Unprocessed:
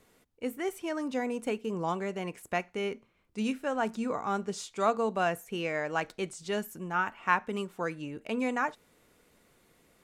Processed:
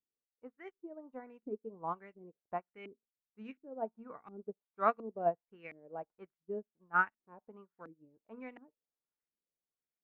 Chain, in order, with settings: LFO low-pass saw up 1.4 Hz 280–2500 Hz; upward expansion 2.5:1, over -45 dBFS; trim -4 dB

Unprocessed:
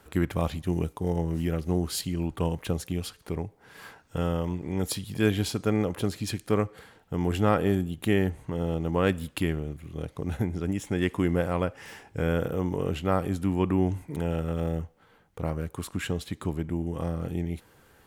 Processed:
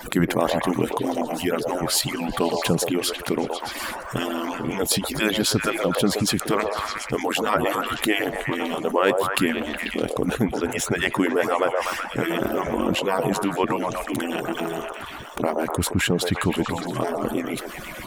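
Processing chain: harmonic-percussive separation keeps percussive; repeats whose band climbs or falls 123 ms, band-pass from 650 Hz, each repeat 0.7 oct, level -4 dB; level flattener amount 50%; trim +6.5 dB

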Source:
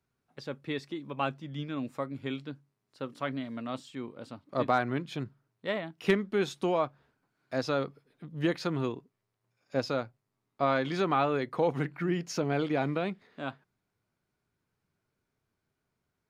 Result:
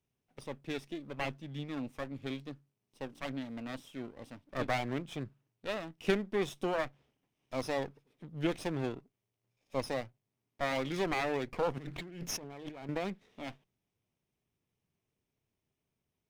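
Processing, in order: comb filter that takes the minimum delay 0.33 ms; 11.78–12.89 s: compressor with a negative ratio -41 dBFS, ratio -1; trim -3 dB

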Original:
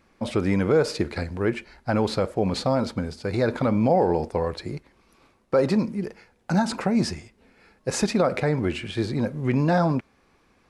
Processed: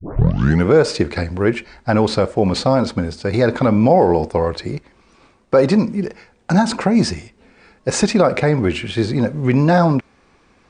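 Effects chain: tape start-up on the opening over 0.66 s; brick-wall FIR low-pass 9.6 kHz; trim +7.5 dB

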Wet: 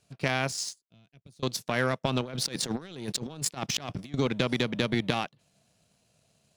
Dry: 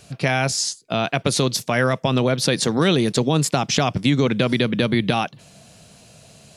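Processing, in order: 0.82–1.43 s: amplifier tone stack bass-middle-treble 10-0-1; power-law waveshaper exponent 1.4; 2.21–4.14 s: compressor with a negative ratio -29 dBFS, ratio -0.5; trim -4 dB

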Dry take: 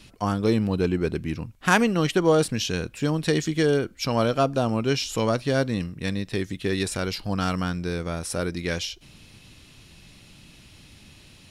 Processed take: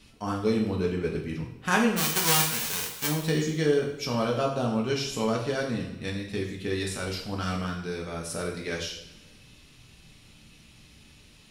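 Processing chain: 1.96–3.07 s: formants flattened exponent 0.1; two-slope reverb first 0.63 s, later 1.8 s, from -17 dB, DRR -1.5 dB; trim -7.5 dB

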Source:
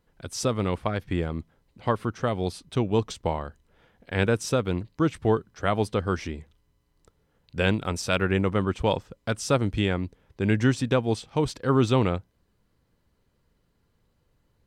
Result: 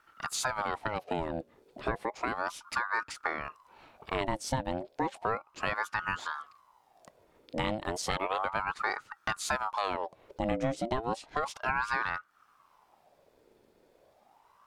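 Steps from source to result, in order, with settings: 10.51–11.15 s: bass shelf 84 Hz +11 dB; compression 3:1, threshold -37 dBFS, peak gain reduction 16.5 dB; ring modulator with a swept carrier 880 Hz, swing 55%, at 0.33 Hz; trim +7 dB

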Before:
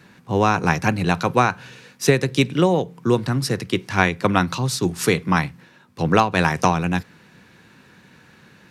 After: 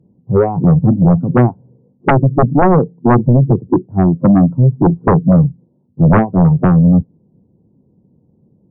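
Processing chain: spectral noise reduction 18 dB; Gaussian low-pass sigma 17 samples; sine folder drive 15 dB, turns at -5 dBFS

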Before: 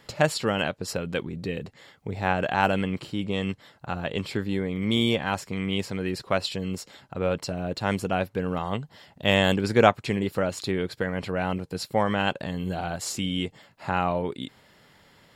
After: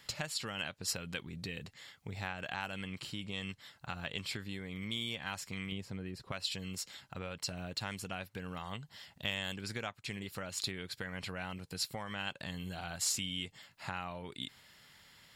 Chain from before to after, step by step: 5.72–6.32 s: tilt shelf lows +7.5 dB, about 1.1 kHz; compression 6:1, threshold -29 dBFS, peak gain reduction 16.5 dB; amplifier tone stack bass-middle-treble 5-5-5; trim +7.5 dB

